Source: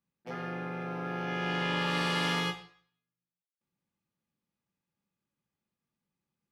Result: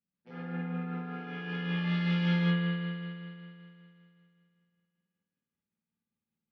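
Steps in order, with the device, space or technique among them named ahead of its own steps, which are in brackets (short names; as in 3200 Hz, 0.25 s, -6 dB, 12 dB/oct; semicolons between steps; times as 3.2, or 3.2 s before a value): combo amplifier with spring reverb and tremolo (spring tank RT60 2.7 s, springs 52 ms, chirp 65 ms, DRR -3.5 dB; tremolo 5.2 Hz, depth 31%; speaker cabinet 78–4600 Hz, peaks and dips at 130 Hz -10 dB, 220 Hz +4 dB, 320 Hz -5 dB, 690 Hz -8 dB, 1100 Hz -4 dB); low shelf 230 Hz +8 dB; gain -8.5 dB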